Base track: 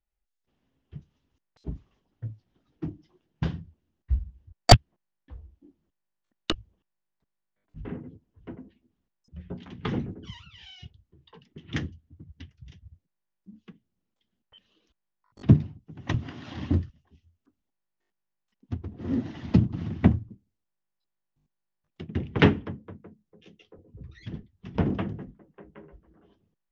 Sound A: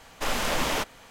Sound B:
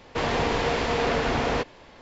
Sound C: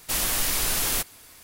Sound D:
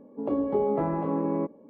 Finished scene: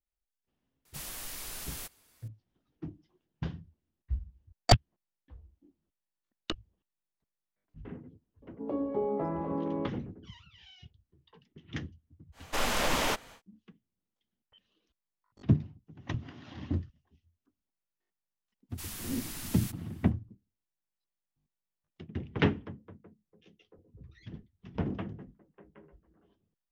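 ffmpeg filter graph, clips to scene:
-filter_complex "[3:a]asplit=2[a][b];[0:a]volume=-7.5dB[c];[b]equalizer=f=530:t=o:w=0.81:g=-9[d];[a]atrim=end=1.43,asetpts=PTS-STARTPTS,volume=-16.5dB,afade=t=in:d=0.004:c=hsin,afade=t=out:st=1.426:d=0.004:c=hsin,adelay=850[e];[4:a]atrim=end=1.69,asetpts=PTS-STARTPTS,volume=-6dB,afade=t=in:d=0.004:c=hsin,afade=t=out:st=1.686:d=0.004:c=hsin,adelay=371322S[f];[1:a]atrim=end=1.1,asetpts=PTS-STARTPTS,volume=-2dB,afade=t=in:d=0.1,afade=t=out:st=1:d=0.1,adelay=12320[g];[d]atrim=end=1.43,asetpts=PTS-STARTPTS,volume=-17dB,afade=t=in:d=0.05,afade=t=out:st=1.38:d=0.05,adelay=18690[h];[c][e][f][g][h]amix=inputs=5:normalize=0"

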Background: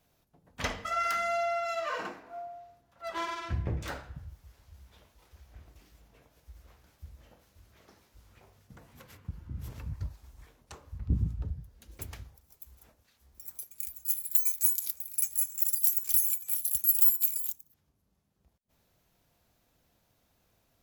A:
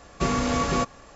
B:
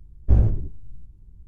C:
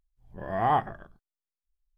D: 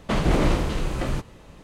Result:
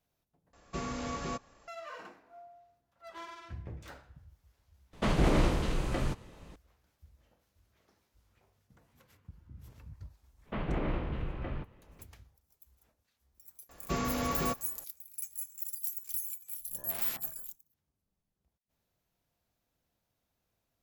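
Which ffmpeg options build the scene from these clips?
-filter_complex "[1:a]asplit=2[a][b];[4:a]asplit=2[c][d];[0:a]volume=-11dB[e];[d]lowpass=f=2.9k:w=0.5412,lowpass=f=2.9k:w=1.3066[f];[3:a]aeval=exprs='(mod(15*val(0)+1,2)-1)/15':c=same[g];[e]asplit=2[h][i];[h]atrim=end=0.534[j];[a]atrim=end=1.15,asetpts=PTS-STARTPTS,volume=-13dB[k];[i]atrim=start=1.676[l];[c]atrim=end=1.63,asetpts=PTS-STARTPTS,volume=-5.5dB,afade=t=in:d=0.004:c=hsin,afade=t=out:st=1.626:d=0.004:c=hsin,adelay=217413S[m];[f]atrim=end=1.63,asetpts=PTS-STARTPTS,volume=-12.5dB,afade=t=in:d=0.05,afade=t=out:st=1.58:d=0.05,adelay=10430[n];[b]atrim=end=1.15,asetpts=PTS-STARTPTS,volume=-8.5dB,afade=t=in:d=0.004:c=hsin,afade=t=out:st=1.146:d=0.004:c=hsin,adelay=13690[o];[g]atrim=end=1.97,asetpts=PTS-STARTPTS,volume=-15.5dB,afade=t=in:d=0.004:c=hsin,afade=t=out:st=1.966:d=0.004:c=hsin,adelay=16370[p];[j][k]acrossfade=d=0.004:c1=hsin:c2=hsin[q];[q][l]acrossfade=d=0.004:c1=hsin:c2=hsin[r];[r][m][n][o][p]amix=inputs=5:normalize=0"

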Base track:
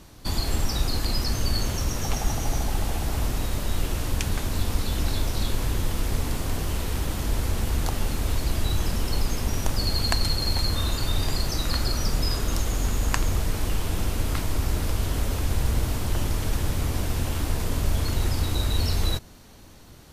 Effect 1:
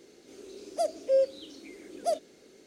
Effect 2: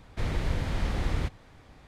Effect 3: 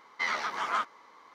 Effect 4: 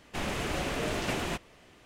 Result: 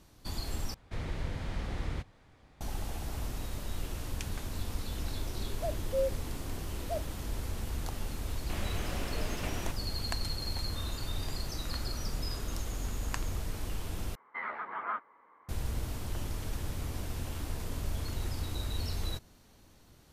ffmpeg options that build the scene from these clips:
-filter_complex "[0:a]volume=-11dB[a];[1:a]tiltshelf=f=970:g=7[b];[3:a]lowpass=f=2k:w=0.5412,lowpass=f=2k:w=1.3066[c];[a]asplit=3[d][e][f];[d]atrim=end=0.744[g];[2:a]atrim=end=1.87,asetpts=PTS-STARTPTS,volume=-7dB[h];[e]atrim=start=2.606:end=14.154[i];[c]atrim=end=1.34,asetpts=PTS-STARTPTS,volume=-5.5dB[j];[f]atrim=start=15.486[k];[b]atrim=end=2.66,asetpts=PTS-STARTPTS,volume=-10.5dB,afade=t=in:d=0.004:c=hsin,afade=t=out:st=2.656:d=0.004:c=hsin,adelay=4840[l];[4:a]atrim=end=1.85,asetpts=PTS-STARTPTS,volume=-8dB,afade=t=in:d=0.004:c=hsin,afade=t=out:st=1.846:d=0.004:c=hsin,adelay=8350[m];[g][h]acrossfade=d=0.004:c1=hsin:c2=hsin[n];[n][i]acrossfade=d=0.004:c1=hsin:c2=hsin[o];[o][j]acrossfade=d=0.004:c1=hsin:c2=hsin[p];[p][k]acrossfade=d=0.004:c1=hsin:c2=hsin[q];[q][l][m]amix=inputs=3:normalize=0"

